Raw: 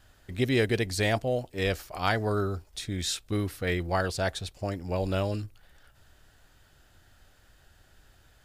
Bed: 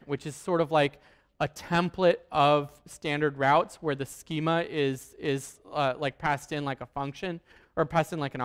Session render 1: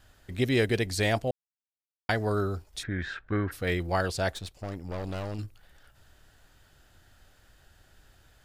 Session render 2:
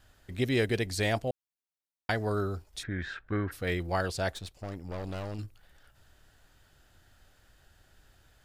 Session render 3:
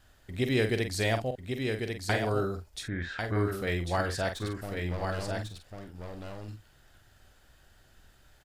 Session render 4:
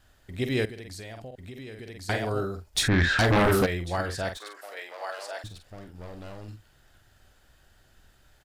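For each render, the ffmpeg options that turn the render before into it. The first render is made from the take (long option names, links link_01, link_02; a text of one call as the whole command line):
ffmpeg -i in.wav -filter_complex "[0:a]asplit=3[link_01][link_02][link_03];[link_01]afade=type=out:start_time=2.82:duration=0.02[link_04];[link_02]lowpass=frequency=1600:width_type=q:width=6.2,afade=type=in:start_time=2.82:duration=0.02,afade=type=out:start_time=3.51:duration=0.02[link_05];[link_03]afade=type=in:start_time=3.51:duration=0.02[link_06];[link_04][link_05][link_06]amix=inputs=3:normalize=0,asettb=1/sr,asplit=3[link_07][link_08][link_09];[link_07]atrim=end=4.334[link_10];[link_08]atrim=start=4.33:end=5.39,asetpts=PTS-STARTPTS,afade=type=in:duration=0.004:curve=qsin,afade=type=out:start_time=1.056:duration=0.004:curve=qsin,aeval=exprs='(tanh(35.5*val(0)+0.6)-tanh(0.6))/35.5':channel_layout=same[link_11];[link_09]atrim=start=5.386[link_12];[link_10][link_11]acrossfade=duration=0.004:curve1=hsin:curve2=qsin[link_13];[link_13][link_12]acrossfade=duration=0.004:curve1=qsin:curve2=hsin,asplit=3[link_14][link_15][link_16];[link_14]atrim=end=1.31,asetpts=PTS-STARTPTS,afade=type=out:start_time=1.306:duration=0.004:curve=hsin[link_17];[link_15]atrim=start=1.31:end=2.09,asetpts=PTS-STARTPTS,volume=0[link_18];[link_16]atrim=start=2.09,asetpts=PTS-STARTPTS,afade=type=in:duration=0.004:curve=hsin[link_19];[link_17][link_18][link_19]concat=n=3:v=0:a=1" out.wav
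ffmpeg -i in.wav -af "volume=-2.5dB" out.wav
ffmpeg -i in.wav -filter_complex "[0:a]asplit=2[link_01][link_02];[link_02]adelay=46,volume=-8dB[link_03];[link_01][link_03]amix=inputs=2:normalize=0,asplit=2[link_04][link_05];[link_05]aecho=0:1:1096:0.562[link_06];[link_04][link_06]amix=inputs=2:normalize=0" out.wav
ffmpeg -i in.wav -filter_complex "[0:a]asettb=1/sr,asplit=3[link_01][link_02][link_03];[link_01]atrim=end=0.654[link_04];[link_02]atrim=start=0.65:end=2.09,asetpts=PTS-STARTPTS,afade=type=in:duration=0.004:curve=qsin,afade=type=out:start_time=1.436:duration=0.004:curve=qsin,acompressor=threshold=-37dB:ratio=10:attack=3.2:release=140:knee=1:detection=peak[link_05];[link_03]atrim=start=2.086[link_06];[link_04][link_05]acrossfade=duration=0.004:curve1=hsin:curve2=qsin[link_07];[link_07][link_06]acrossfade=duration=0.004:curve1=qsin:curve2=hsin,asplit=3[link_08][link_09][link_10];[link_08]afade=type=out:start_time=2.75:duration=0.02[link_11];[link_09]aeval=exprs='0.141*sin(PI/2*3.98*val(0)/0.141)':channel_layout=same,afade=type=in:start_time=2.75:duration=0.02,afade=type=out:start_time=3.65:duration=0.02[link_12];[link_10]afade=type=in:start_time=3.65:duration=0.02[link_13];[link_11][link_12][link_13]amix=inputs=3:normalize=0,asettb=1/sr,asplit=3[link_14][link_15][link_16];[link_14]atrim=end=4.374[link_17];[link_15]atrim=start=4.37:end=5.44,asetpts=PTS-STARTPTS,afade=type=in:duration=0.004:curve=qsin,afade=type=out:start_time=1.066:duration=0.004:curve=qsin,highpass=frequency=550:width=0.5412,highpass=frequency=550:width=1.3066[link_18];[link_16]atrim=start=5.436[link_19];[link_17][link_18]acrossfade=duration=0.004:curve1=hsin:curve2=qsin[link_20];[link_20][link_19]acrossfade=duration=0.004:curve1=qsin:curve2=hsin" out.wav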